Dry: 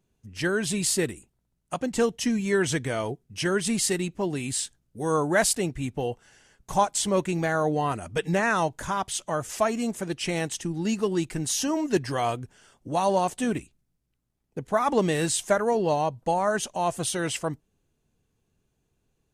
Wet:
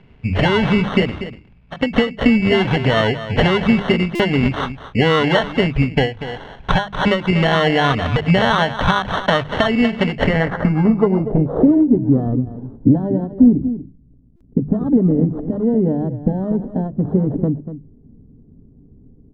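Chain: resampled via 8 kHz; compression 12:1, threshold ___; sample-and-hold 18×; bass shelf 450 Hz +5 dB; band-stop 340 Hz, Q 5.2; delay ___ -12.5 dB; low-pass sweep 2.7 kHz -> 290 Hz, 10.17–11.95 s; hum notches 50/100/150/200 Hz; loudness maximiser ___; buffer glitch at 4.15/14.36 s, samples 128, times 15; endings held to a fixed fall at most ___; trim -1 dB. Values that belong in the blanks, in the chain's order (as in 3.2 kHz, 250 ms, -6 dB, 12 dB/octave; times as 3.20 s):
-36 dBFS, 240 ms, +23 dB, 170 dB/s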